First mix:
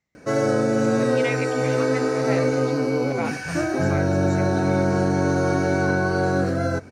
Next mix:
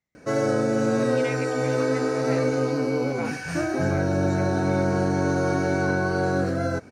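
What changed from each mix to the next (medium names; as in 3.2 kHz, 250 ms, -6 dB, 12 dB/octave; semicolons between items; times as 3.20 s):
speech -6.0 dB; background: send -11.0 dB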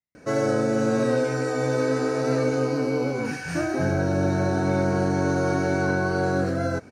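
speech -11.0 dB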